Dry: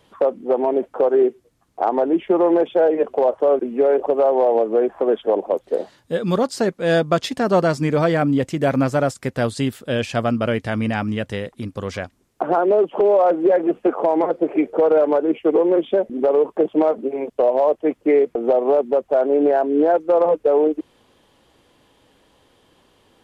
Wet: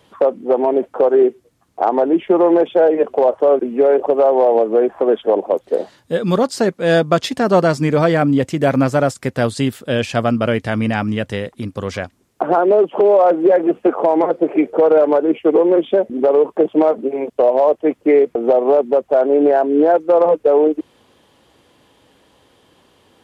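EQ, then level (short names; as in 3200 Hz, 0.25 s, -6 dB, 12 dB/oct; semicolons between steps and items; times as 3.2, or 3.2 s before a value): HPF 56 Hz; +3.5 dB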